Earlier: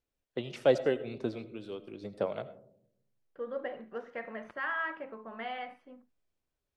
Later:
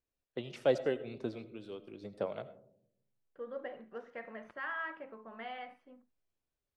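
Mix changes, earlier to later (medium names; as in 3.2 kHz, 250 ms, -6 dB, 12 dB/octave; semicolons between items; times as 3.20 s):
first voice -4.0 dB; second voice -5.0 dB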